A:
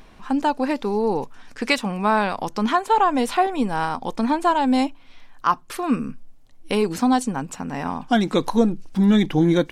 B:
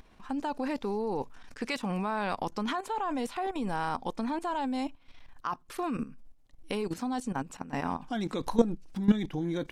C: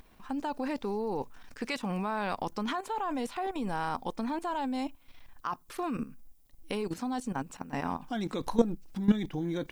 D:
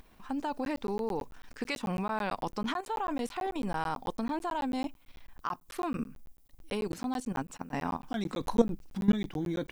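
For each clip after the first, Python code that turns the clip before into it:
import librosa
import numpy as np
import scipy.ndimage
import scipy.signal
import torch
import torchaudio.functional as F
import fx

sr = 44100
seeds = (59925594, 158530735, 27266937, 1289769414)

y1 = fx.level_steps(x, sr, step_db=14)
y1 = F.gain(torch.from_numpy(y1), -3.0).numpy()
y2 = fx.dmg_noise_colour(y1, sr, seeds[0], colour='violet', level_db=-71.0)
y2 = F.gain(torch.from_numpy(y2), -1.0).numpy()
y3 = fx.buffer_crackle(y2, sr, first_s=0.65, period_s=0.11, block=512, kind='zero')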